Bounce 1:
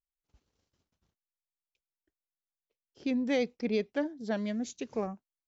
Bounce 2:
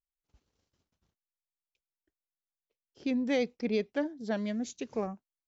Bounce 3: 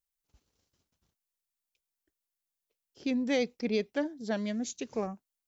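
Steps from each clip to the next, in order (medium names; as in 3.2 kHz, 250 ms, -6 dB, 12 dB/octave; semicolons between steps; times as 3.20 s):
no audible change
treble shelf 5.1 kHz +8.5 dB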